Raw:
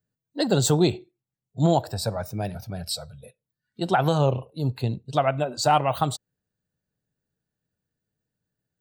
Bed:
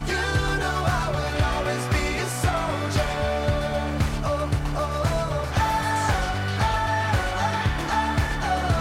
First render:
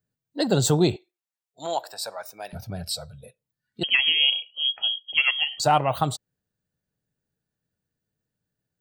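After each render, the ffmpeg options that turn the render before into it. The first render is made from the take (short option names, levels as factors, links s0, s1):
-filter_complex "[0:a]asettb=1/sr,asplit=3[s0][s1][s2];[s0]atrim=end=0.964[s3];[s1]atrim=start=0.96:end=2.53,asetpts=PTS-STARTPTS,afade=t=in:d=0.004:c=qsin,afade=t=out:st=1.566:d=0.004:c=qsin,highpass=800[s4];[s2]atrim=start=2.526[s5];[s3][s4]acrossfade=d=0.004:c1=hsin:c2=qsin[s6];[s6][s5]acrossfade=d=0.004:c1=qsin:c2=hsin,asettb=1/sr,asplit=3[s7][s8][s9];[s7]atrim=end=3.834[s10];[s8]atrim=start=3.83:end=5.6,asetpts=PTS-STARTPTS,afade=t=in:d=0.004:c=qsin,afade=t=out:st=1.766:d=0.004:c=qsin,lowpass=f=2900:t=q:w=0.5098,lowpass=f=2900:t=q:w=0.6013,lowpass=f=2900:t=q:w=0.9,lowpass=f=2900:t=q:w=2.563,afreqshift=-3400[s11];[s9]atrim=start=5.596[s12];[s10][s11]acrossfade=d=0.004:c1=hsin:c2=qsin[s13];[s13][s12]acrossfade=d=0.004:c1=qsin:c2=hsin"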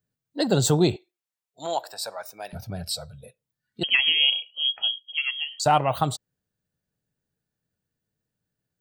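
-filter_complex "[0:a]asettb=1/sr,asplit=3[s0][s1][s2];[s0]atrim=end=4.914[s3];[s1]atrim=start=4.91:end=5.66,asetpts=PTS-STARTPTS,afade=t=in:d=0.004:c=qsin,afade=t=out:st=0.746:d=0.004:c=qsin,bandpass=f=7700:t=q:w=0.61[s4];[s2]atrim=start=5.656[s5];[s3][s4]acrossfade=d=0.004:c1=hsin:c2=qsin[s6];[s6][s5]acrossfade=d=0.004:c1=qsin:c2=hsin"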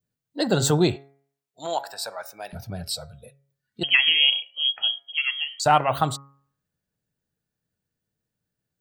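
-af "bandreject=f=138.4:t=h:w=4,bandreject=f=276.8:t=h:w=4,bandreject=f=415.2:t=h:w=4,bandreject=f=553.6:t=h:w=4,bandreject=f=692:t=h:w=4,bandreject=f=830.4:t=h:w=4,bandreject=f=968.8:t=h:w=4,bandreject=f=1107.2:t=h:w=4,bandreject=f=1245.6:t=h:w=4,bandreject=f=1384:t=h:w=4,bandreject=f=1522.4:t=h:w=4,bandreject=f=1660.8:t=h:w=4,bandreject=f=1799.2:t=h:w=4,bandreject=f=1937.6:t=h:w=4,bandreject=f=2076:t=h:w=4,bandreject=f=2214.4:t=h:w=4,bandreject=f=2352.8:t=h:w=4,adynamicequalizer=threshold=0.0158:dfrequency=1600:dqfactor=1.2:tfrequency=1600:tqfactor=1.2:attack=5:release=100:ratio=0.375:range=3:mode=boostabove:tftype=bell"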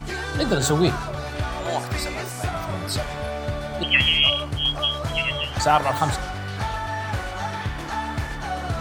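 -filter_complex "[1:a]volume=0.596[s0];[0:a][s0]amix=inputs=2:normalize=0"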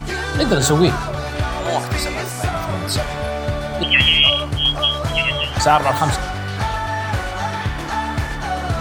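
-af "volume=1.88,alimiter=limit=0.708:level=0:latency=1"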